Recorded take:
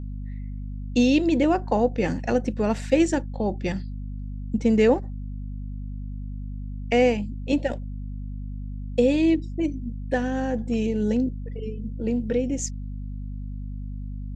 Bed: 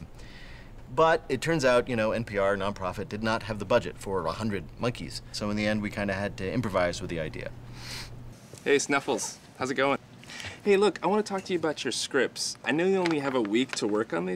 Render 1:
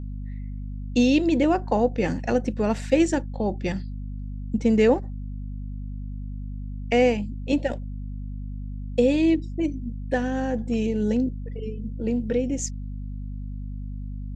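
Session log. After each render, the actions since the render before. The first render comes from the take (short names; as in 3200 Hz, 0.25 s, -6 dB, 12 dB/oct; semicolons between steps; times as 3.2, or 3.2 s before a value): nothing audible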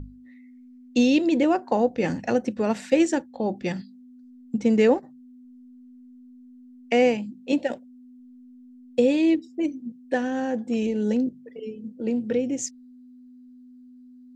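notches 50/100/150/200 Hz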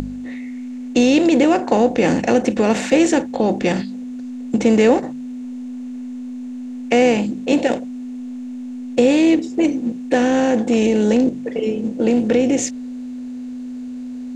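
per-bin compression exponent 0.6; in parallel at 0 dB: limiter -15.5 dBFS, peak gain reduction 10.5 dB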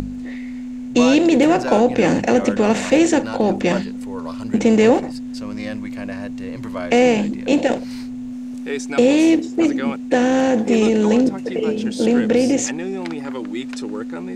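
add bed -3 dB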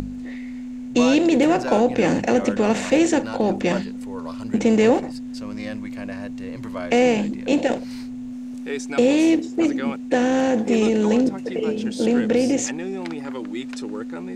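gain -3 dB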